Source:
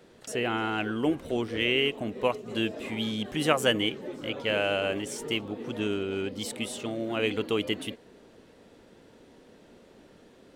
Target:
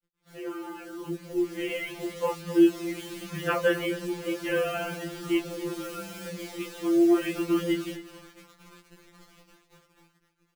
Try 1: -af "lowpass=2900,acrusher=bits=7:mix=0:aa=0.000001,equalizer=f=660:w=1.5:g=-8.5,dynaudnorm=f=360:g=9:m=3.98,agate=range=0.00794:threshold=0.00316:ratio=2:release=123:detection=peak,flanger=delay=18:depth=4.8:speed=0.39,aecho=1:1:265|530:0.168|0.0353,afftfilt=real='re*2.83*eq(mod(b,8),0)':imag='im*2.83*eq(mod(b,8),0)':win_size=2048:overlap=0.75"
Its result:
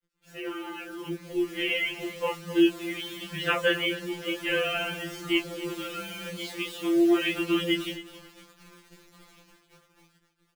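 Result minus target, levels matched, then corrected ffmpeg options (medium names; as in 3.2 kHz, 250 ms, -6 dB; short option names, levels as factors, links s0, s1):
4 kHz band +8.5 dB
-af "lowpass=1300,acrusher=bits=7:mix=0:aa=0.000001,equalizer=f=660:w=1.5:g=-8.5,dynaudnorm=f=360:g=9:m=3.98,agate=range=0.00794:threshold=0.00316:ratio=2:release=123:detection=peak,flanger=delay=18:depth=4.8:speed=0.39,aecho=1:1:265|530:0.168|0.0353,afftfilt=real='re*2.83*eq(mod(b,8),0)':imag='im*2.83*eq(mod(b,8),0)':win_size=2048:overlap=0.75"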